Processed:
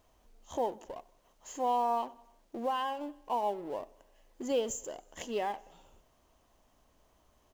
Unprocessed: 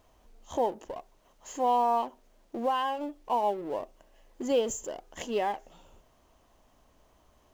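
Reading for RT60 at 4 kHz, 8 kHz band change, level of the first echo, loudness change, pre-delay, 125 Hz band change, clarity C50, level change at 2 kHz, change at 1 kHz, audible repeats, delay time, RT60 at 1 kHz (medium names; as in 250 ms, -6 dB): no reverb, -2.5 dB, -23.5 dB, -4.5 dB, no reverb, -4.5 dB, no reverb, -4.0 dB, -4.5 dB, 3, 93 ms, no reverb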